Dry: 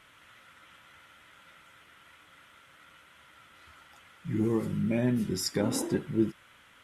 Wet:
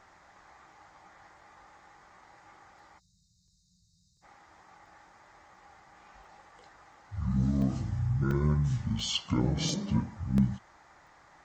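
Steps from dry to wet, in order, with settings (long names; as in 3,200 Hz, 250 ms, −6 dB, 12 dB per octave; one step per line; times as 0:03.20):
time-frequency box erased 0:01.78–0:02.53, 330–6,100 Hz
change of speed 0.597×
regular buffer underruns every 0.69 s, samples 64, zero, from 0:00.72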